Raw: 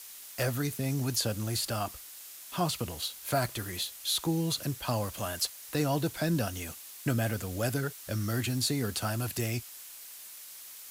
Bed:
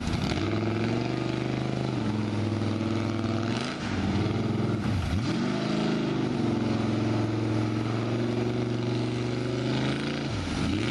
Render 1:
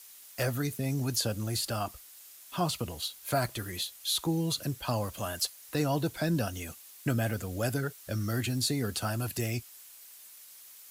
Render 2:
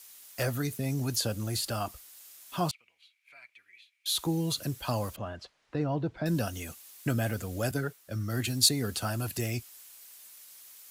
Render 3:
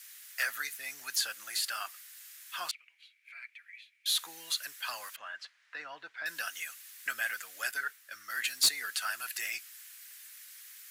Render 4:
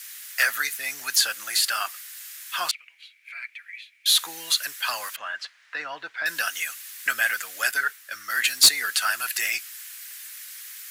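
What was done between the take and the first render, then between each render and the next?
denoiser 6 dB, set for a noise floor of -47 dBFS
2.71–4.06 band-pass 2300 Hz, Q 15; 5.16–6.26 tape spacing loss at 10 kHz 36 dB; 7.71–8.69 three-band expander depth 100%
resonant high-pass 1700 Hz, resonance Q 2.7; soft clip -17.5 dBFS, distortion -14 dB
gain +10.5 dB

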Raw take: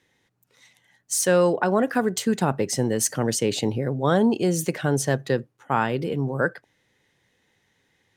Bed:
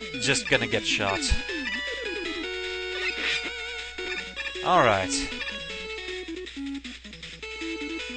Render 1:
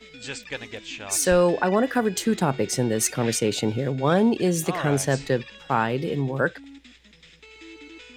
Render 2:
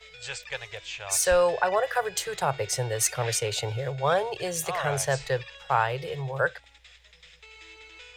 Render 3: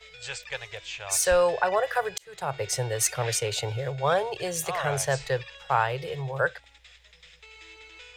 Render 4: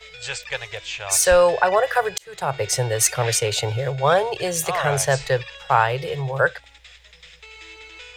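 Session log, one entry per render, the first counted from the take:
add bed -11 dB
Chebyshev band-stop 110–560 Hz, order 2
2.18–2.67 fade in
gain +6.5 dB

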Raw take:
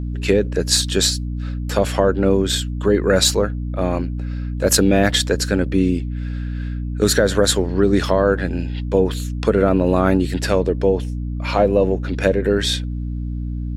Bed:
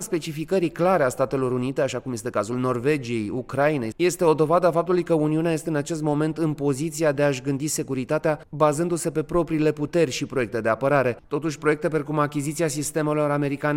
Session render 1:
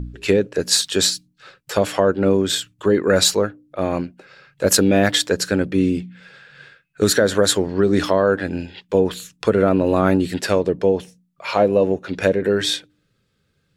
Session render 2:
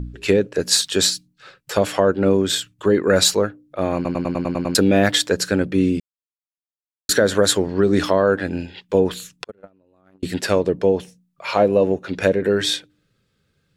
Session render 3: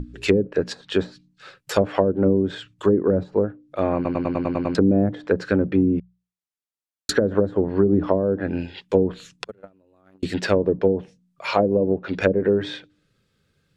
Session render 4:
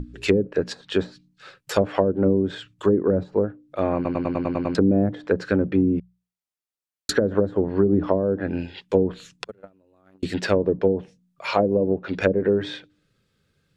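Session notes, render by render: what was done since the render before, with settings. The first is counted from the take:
de-hum 60 Hz, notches 5
3.95 stutter in place 0.10 s, 8 plays; 6–7.09 mute; 9.44–10.23 gate -11 dBFS, range -42 dB
treble ducked by the level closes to 400 Hz, closed at -12 dBFS; notches 60/120/180 Hz
gain -1 dB

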